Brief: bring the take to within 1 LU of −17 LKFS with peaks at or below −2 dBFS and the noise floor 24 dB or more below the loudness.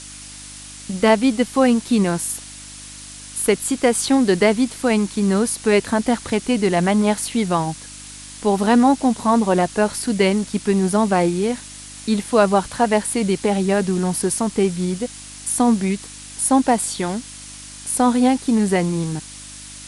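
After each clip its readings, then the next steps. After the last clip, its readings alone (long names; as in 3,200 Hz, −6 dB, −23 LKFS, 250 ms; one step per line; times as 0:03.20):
mains hum 50 Hz; hum harmonics up to 300 Hz; level of the hum −43 dBFS; background noise floor −38 dBFS; target noise floor −43 dBFS; integrated loudness −19.0 LKFS; sample peak −2.5 dBFS; target loudness −17.0 LKFS
→ hum removal 50 Hz, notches 6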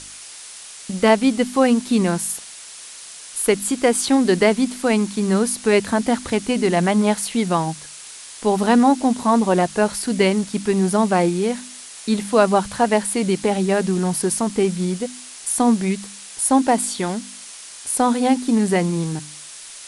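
mains hum none found; background noise floor −39 dBFS; target noise floor −43 dBFS
→ broadband denoise 6 dB, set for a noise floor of −39 dBFS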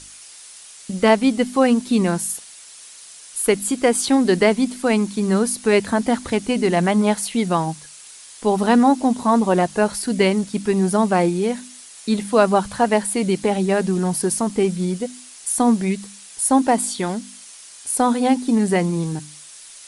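background noise floor −42 dBFS; target noise floor −43 dBFS
→ broadband denoise 6 dB, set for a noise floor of −42 dBFS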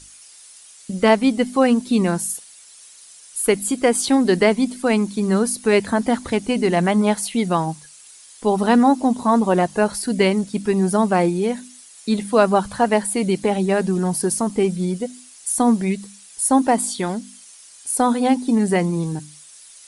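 background noise floor −45 dBFS; integrated loudness −19.5 LKFS; sample peak −3.0 dBFS; target loudness −17.0 LKFS
→ level +2.5 dB
brickwall limiter −2 dBFS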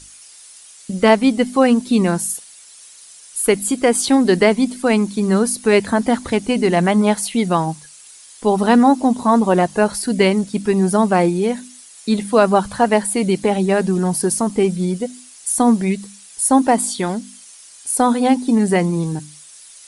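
integrated loudness −17.0 LKFS; sample peak −2.0 dBFS; background noise floor −43 dBFS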